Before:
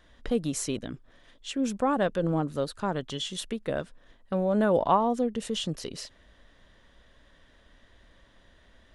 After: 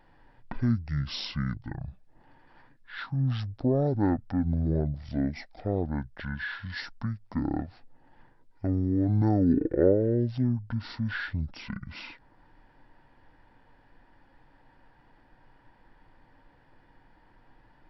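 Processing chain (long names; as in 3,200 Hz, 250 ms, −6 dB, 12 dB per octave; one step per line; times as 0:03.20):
dynamic equaliser 6,200 Hz, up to −5 dB, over −52 dBFS, Q 1
wrong playback speed 15 ips tape played at 7.5 ips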